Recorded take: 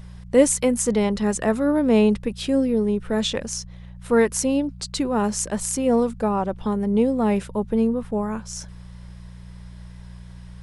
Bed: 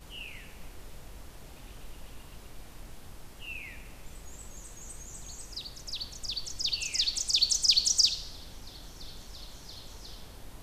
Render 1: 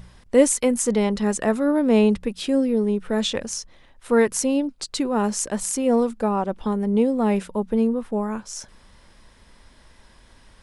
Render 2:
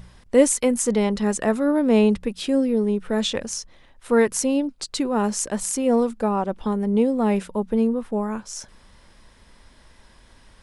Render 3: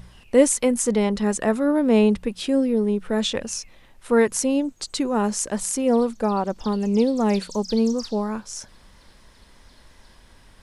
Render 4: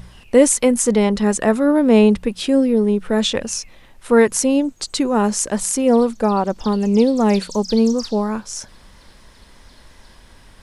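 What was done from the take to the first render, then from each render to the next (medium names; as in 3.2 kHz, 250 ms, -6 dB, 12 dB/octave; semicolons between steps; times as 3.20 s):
de-hum 60 Hz, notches 3
no audible change
add bed -14 dB
trim +5 dB; peak limiter -1 dBFS, peak gain reduction 2.5 dB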